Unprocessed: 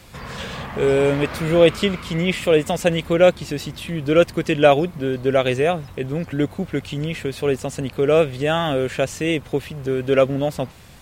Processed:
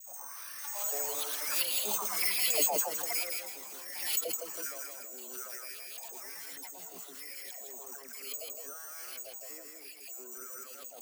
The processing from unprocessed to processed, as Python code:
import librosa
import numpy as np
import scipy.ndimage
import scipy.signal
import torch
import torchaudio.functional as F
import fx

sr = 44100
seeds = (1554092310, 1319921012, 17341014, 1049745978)

p1 = fx.doppler_pass(x, sr, speed_mps=15, closest_m=7.6, pass_at_s=2.31)
p2 = fx.filter_lfo_bandpass(p1, sr, shape='saw_up', hz=1.2, low_hz=640.0, high_hz=3300.0, q=7.4)
p3 = scipy.signal.sosfilt(scipy.signal.butter(16, 170.0, 'highpass', fs=sr, output='sos'), p2)
p4 = fx.high_shelf(p3, sr, hz=2000.0, db=-6.5)
p5 = fx.echo_feedback(p4, sr, ms=162, feedback_pct=29, wet_db=-4.5)
p6 = fx.echo_pitch(p5, sr, ms=83, semitones=6, count=2, db_per_echo=-6.0)
p7 = (np.kron(p6[::6], np.eye(6)[0]) * 6)[:len(p6)]
p8 = fx.over_compress(p7, sr, threshold_db=-58.0, ratio=-1.0)
p9 = p7 + F.gain(torch.from_numpy(p8), 0.5).numpy()
p10 = fx.dispersion(p9, sr, late='lows', ms=110.0, hz=1000.0)
y = fx.pre_swell(p10, sr, db_per_s=57.0)